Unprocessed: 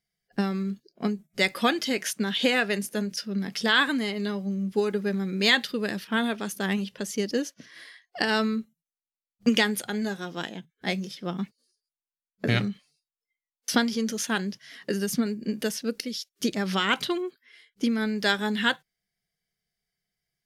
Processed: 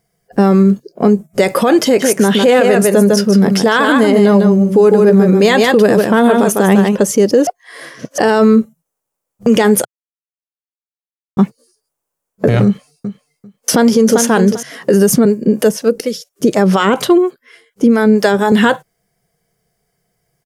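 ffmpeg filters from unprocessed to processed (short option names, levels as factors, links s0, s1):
-filter_complex "[0:a]asplit=3[s0][s1][s2];[s0]afade=t=out:st=1.99:d=0.02[s3];[s1]aecho=1:1:152:0.473,afade=t=in:st=1.99:d=0.02,afade=t=out:st=6.95:d=0.02[s4];[s2]afade=t=in:st=6.95:d=0.02[s5];[s3][s4][s5]amix=inputs=3:normalize=0,asettb=1/sr,asplit=3[s6][s7][s8];[s6]atrim=end=12.654[s9];[s7]atrim=start=12.65:end=14.63,asetpts=PTS-STARTPTS,afade=t=in:d=0.004:c=qsin,afade=t=out:st=1.976:d=0.004:c=qsin,aecho=1:1:394|788:0.251|0.0402,atrim=end_sample=87318[s10];[s8]atrim=start=14.626[s11];[s9][s10]acrossfade=d=0.004:c1=hsin:c2=qsin[s12];[s12][s11]acrossfade=d=0.004:c1=qsin:c2=hsin,asettb=1/sr,asplit=3[s13][s14][s15];[s13]atrim=end=15.254[s16];[s14]atrim=start=15.25:end=18.52,asetpts=PTS-STARTPTS,afade=t=in:d=0.004:c=qsin,afade=t=out:st=3.266:d=0.004:c=qsin,acrossover=split=530[s17][s18];[s17]aeval=exprs='val(0)*(1-0.7/2+0.7/2*cos(2*PI*4.2*n/s))':c=same[s19];[s18]aeval=exprs='val(0)*(1-0.7/2-0.7/2*cos(2*PI*4.2*n/s))':c=same[s20];[s19][s20]amix=inputs=2:normalize=0[s21];[s15]atrim=start=18.516[s22];[s16][s21]acrossfade=d=0.004:c1=hsin:c2=qsin[s23];[s23][s22]acrossfade=d=0.004:c1=qsin:c2=hsin,asplit=5[s24][s25][s26][s27][s28];[s24]atrim=end=7.472[s29];[s25]atrim=start=7.468:end=8.182,asetpts=PTS-STARTPTS,areverse[s30];[s26]atrim=start=8.178:end=9.85,asetpts=PTS-STARTPTS,afade=t=out:st=1.668:d=0.004:c=hsin[s31];[s27]atrim=start=9.85:end=11.37,asetpts=PTS-STARTPTS,volume=0[s32];[s28]atrim=start=11.37,asetpts=PTS-STARTPTS,afade=t=in:d=0.004:c=hsin[s33];[s29][s30]acrossfade=d=0.004:c1=hsin:c2=hsin[s34];[s31][s32][s33]concat=n=3:v=0:a=1[s35];[s34][s35]acrossfade=d=0.004:c1=hsin:c2=hsin,equalizer=f=125:t=o:w=1:g=6,equalizer=f=500:t=o:w=1:g=10,equalizer=f=1000:t=o:w=1:g=5,equalizer=f=2000:t=o:w=1:g=-4,equalizer=f=4000:t=o:w=1:g=-9,equalizer=f=8000:t=o:w=1:g=3,alimiter=level_in=7.94:limit=0.891:release=50:level=0:latency=1,volume=0.891"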